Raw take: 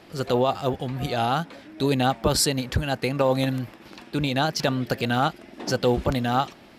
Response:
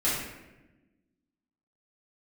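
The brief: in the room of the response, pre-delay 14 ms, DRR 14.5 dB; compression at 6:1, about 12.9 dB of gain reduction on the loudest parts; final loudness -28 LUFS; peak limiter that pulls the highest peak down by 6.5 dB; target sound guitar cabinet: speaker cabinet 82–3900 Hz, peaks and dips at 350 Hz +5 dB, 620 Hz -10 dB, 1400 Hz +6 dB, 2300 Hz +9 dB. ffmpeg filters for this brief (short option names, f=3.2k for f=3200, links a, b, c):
-filter_complex "[0:a]acompressor=threshold=-31dB:ratio=6,alimiter=level_in=0.5dB:limit=-24dB:level=0:latency=1,volume=-0.5dB,asplit=2[a][b];[1:a]atrim=start_sample=2205,adelay=14[c];[b][c]afir=irnorm=-1:irlink=0,volume=-25.5dB[d];[a][d]amix=inputs=2:normalize=0,highpass=82,equalizer=f=350:t=q:w=4:g=5,equalizer=f=620:t=q:w=4:g=-10,equalizer=f=1.4k:t=q:w=4:g=6,equalizer=f=2.3k:t=q:w=4:g=9,lowpass=f=3.9k:w=0.5412,lowpass=f=3.9k:w=1.3066,volume=8dB"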